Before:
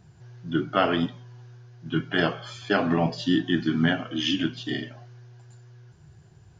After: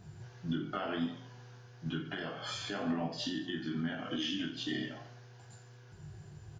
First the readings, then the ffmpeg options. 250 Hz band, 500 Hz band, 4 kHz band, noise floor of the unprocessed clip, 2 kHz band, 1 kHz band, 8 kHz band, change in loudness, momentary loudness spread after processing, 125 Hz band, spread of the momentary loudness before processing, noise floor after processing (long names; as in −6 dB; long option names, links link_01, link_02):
−11.0 dB, −13.5 dB, −8.5 dB, −53 dBFS, −12.5 dB, −13.0 dB, can't be measured, −11.5 dB, 19 LU, −11.0 dB, 10 LU, −55 dBFS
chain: -filter_complex "[0:a]acompressor=threshold=-29dB:ratio=6,alimiter=level_in=3.5dB:limit=-24dB:level=0:latency=1:release=224,volume=-3.5dB,asplit=2[link_01][link_02];[link_02]aecho=0:1:20|48|87.2|142.1|218.9:0.631|0.398|0.251|0.158|0.1[link_03];[link_01][link_03]amix=inputs=2:normalize=0"